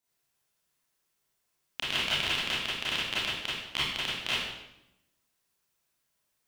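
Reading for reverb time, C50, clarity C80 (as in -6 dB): 0.90 s, -1.0 dB, 3.0 dB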